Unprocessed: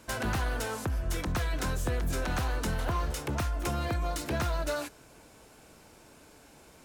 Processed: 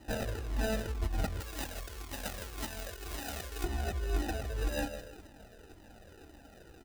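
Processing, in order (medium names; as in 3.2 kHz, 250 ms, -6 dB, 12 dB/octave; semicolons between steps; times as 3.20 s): steep low-pass 3.6 kHz 72 dB/octave; compressor with a negative ratio -33 dBFS, ratio -0.5; comb 3.1 ms, depth 80%; feedback delay 161 ms, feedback 38%, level -10 dB; sample-rate reducer 1.1 kHz, jitter 0%; 1.40–3.64 s: tilt EQ +2.5 dB/octave; Shepard-style flanger falling 1.9 Hz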